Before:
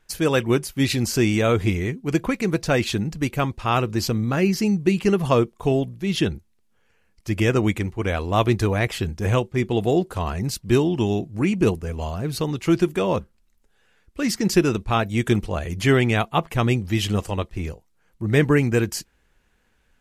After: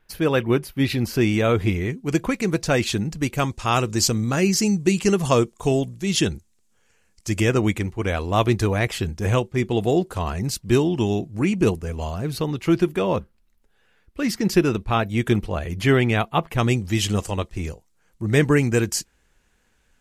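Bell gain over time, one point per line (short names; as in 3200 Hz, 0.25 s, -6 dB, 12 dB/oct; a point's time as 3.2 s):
bell 7300 Hz 1.1 oct
-11.5 dB
from 1.21 s -4.5 dB
from 1.9 s +4 dB
from 3.38 s +13 dB
from 7.41 s +2.5 dB
from 12.33 s -4.5 dB
from 16.58 s +6.5 dB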